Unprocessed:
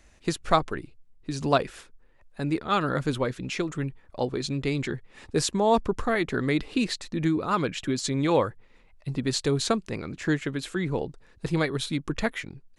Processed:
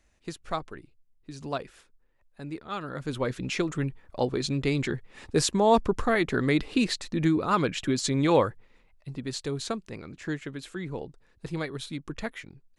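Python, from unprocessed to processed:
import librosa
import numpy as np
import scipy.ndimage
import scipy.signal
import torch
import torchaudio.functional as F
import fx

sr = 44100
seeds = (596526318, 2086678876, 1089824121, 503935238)

y = fx.gain(x, sr, db=fx.line((2.92, -10.0), (3.34, 1.0), (8.46, 1.0), (9.08, -7.0)))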